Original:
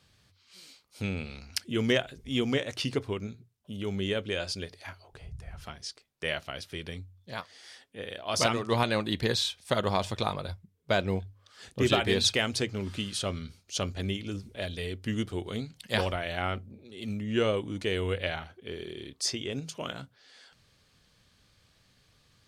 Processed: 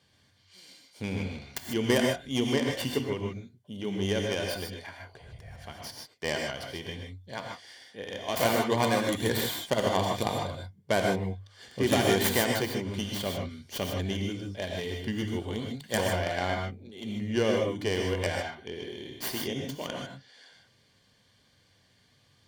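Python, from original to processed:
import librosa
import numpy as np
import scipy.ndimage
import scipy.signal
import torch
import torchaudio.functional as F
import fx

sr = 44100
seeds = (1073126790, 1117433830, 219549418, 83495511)

y = fx.tracing_dist(x, sr, depth_ms=0.46)
y = fx.high_shelf(y, sr, hz=8200.0, db=-3.5)
y = fx.notch_comb(y, sr, f0_hz=1300.0)
y = fx.rev_gated(y, sr, seeds[0], gate_ms=170, shape='rising', drr_db=1.5)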